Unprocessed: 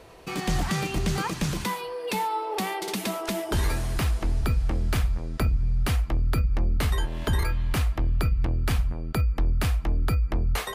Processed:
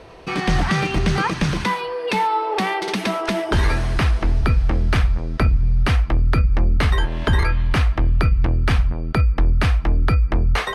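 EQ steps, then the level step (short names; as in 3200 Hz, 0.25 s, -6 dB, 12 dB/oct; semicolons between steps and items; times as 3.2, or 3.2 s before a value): notch 7200 Hz, Q 7.5; dynamic EQ 1700 Hz, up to +4 dB, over -44 dBFS, Q 1; air absorption 74 m; +7.0 dB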